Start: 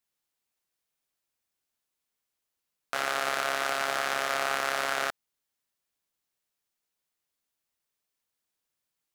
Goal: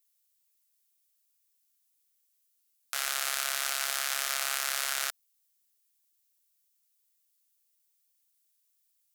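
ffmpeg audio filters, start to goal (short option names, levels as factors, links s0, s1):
-af "aderivative,volume=2.37"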